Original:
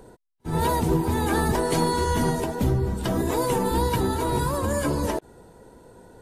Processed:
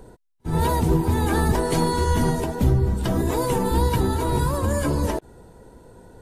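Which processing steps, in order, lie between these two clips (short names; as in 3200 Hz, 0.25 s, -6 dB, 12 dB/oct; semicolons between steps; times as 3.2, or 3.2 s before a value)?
low shelf 120 Hz +8 dB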